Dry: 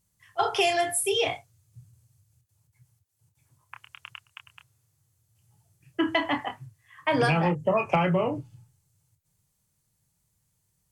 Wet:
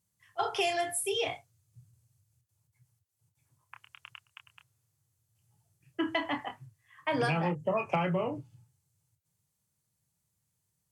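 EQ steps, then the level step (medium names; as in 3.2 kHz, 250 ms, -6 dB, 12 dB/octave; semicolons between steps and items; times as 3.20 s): high-pass 75 Hz; -6.0 dB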